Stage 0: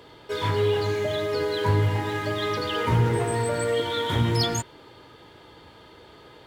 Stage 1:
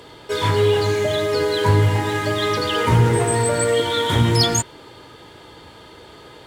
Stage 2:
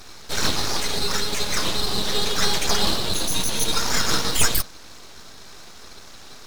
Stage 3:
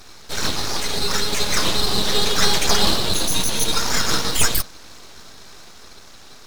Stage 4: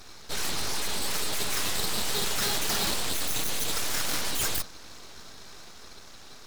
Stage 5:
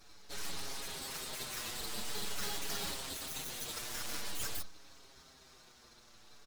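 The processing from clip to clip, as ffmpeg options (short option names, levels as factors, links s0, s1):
-af "equalizer=f=8400:w=1:g=6.5,volume=2"
-af "highpass=f=2000:t=q:w=4.4,aeval=exprs='abs(val(0))':c=same,volume=1.26"
-af "dynaudnorm=f=240:g=9:m=3.76,volume=0.891"
-af "aeval=exprs='0.133*(abs(mod(val(0)/0.133+3,4)-2)-1)':c=same,volume=0.631"
-filter_complex "[0:a]asplit=2[s0][s1];[s1]adelay=6.5,afreqshift=-0.47[s2];[s0][s2]amix=inputs=2:normalize=1,volume=0.376"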